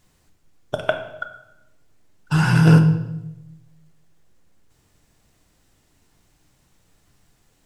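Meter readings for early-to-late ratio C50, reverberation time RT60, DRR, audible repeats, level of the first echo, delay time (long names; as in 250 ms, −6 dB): 9.5 dB, 0.95 s, 5.5 dB, no echo audible, no echo audible, no echo audible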